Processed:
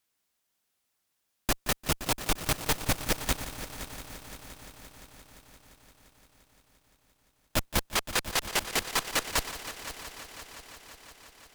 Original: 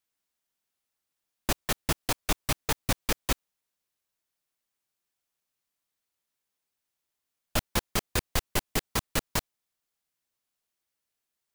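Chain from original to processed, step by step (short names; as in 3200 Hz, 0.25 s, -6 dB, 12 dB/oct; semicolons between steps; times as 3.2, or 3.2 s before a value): 7.9–9.38 weighting filter A; tube stage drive 29 dB, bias 0.5; multi-head echo 0.173 s, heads first and third, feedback 71%, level -14 dB; gain +8 dB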